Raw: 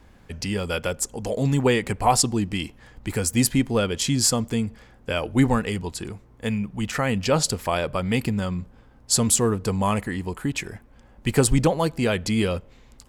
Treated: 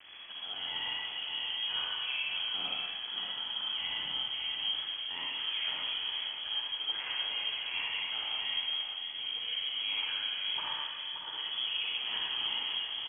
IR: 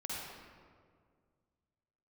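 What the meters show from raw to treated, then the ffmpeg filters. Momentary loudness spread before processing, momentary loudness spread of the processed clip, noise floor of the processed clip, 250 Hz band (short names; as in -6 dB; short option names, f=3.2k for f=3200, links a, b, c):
12 LU, 4 LU, -42 dBFS, -37.0 dB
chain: -filter_complex "[0:a]bandreject=f=89.25:t=h:w=4,bandreject=f=178.5:t=h:w=4,bandreject=f=267.75:t=h:w=4,bandreject=f=357:t=h:w=4,bandreject=f=446.25:t=h:w=4,bandreject=f=535.5:t=h:w=4,bandreject=f=624.75:t=h:w=4,bandreject=f=714:t=h:w=4,bandreject=f=803.25:t=h:w=4,bandreject=f=892.5:t=h:w=4,bandreject=f=981.75:t=h:w=4,bandreject=f=1.071k:t=h:w=4,bandreject=f=1.16025k:t=h:w=4,bandreject=f=1.2495k:t=h:w=4,bandreject=f=1.33875k:t=h:w=4,bandreject=f=1.428k:t=h:w=4,bandreject=f=1.51725k:t=h:w=4,bandreject=f=1.6065k:t=h:w=4,bandreject=f=1.69575k:t=h:w=4,bandreject=f=1.785k:t=h:w=4,bandreject=f=1.87425k:t=h:w=4,bandreject=f=1.9635k:t=h:w=4,bandreject=f=2.05275k:t=h:w=4,bandreject=f=2.142k:t=h:w=4,bandreject=f=2.23125k:t=h:w=4,bandreject=f=2.3205k:t=h:w=4,bandreject=f=2.40975k:t=h:w=4,bandreject=f=2.499k:t=h:w=4,areverse,acompressor=threshold=-36dB:ratio=5,areverse,acrusher=bits=7:mix=0:aa=0.000001,asplit=2[a][b];[b]aeval=exprs='(mod(70.8*val(0)+1,2)-1)/70.8':c=same,volume=-11dB[c];[a][c]amix=inputs=2:normalize=0,aecho=1:1:576:0.447[d];[1:a]atrim=start_sample=2205[e];[d][e]afir=irnorm=-1:irlink=0,lowpass=f=2.9k:t=q:w=0.5098,lowpass=f=2.9k:t=q:w=0.6013,lowpass=f=2.9k:t=q:w=0.9,lowpass=f=2.9k:t=q:w=2.563,afreqshift=-3400"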